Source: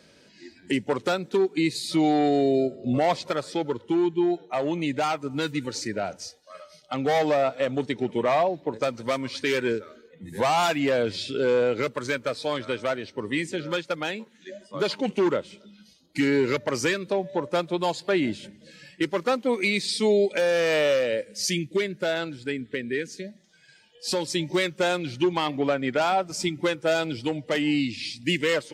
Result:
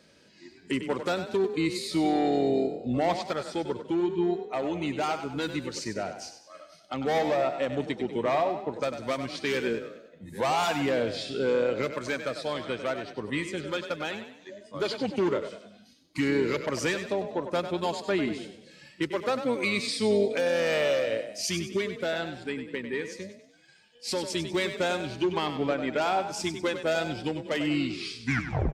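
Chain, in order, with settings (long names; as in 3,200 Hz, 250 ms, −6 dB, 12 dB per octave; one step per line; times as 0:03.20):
turntable brake at the end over 0.53 s
echo with shifted repeats 97 ms, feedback 42%, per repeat +33 Hz, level −9.5 dB
pitch-shifted copies added −12 semitones −17 dB
level −4 dB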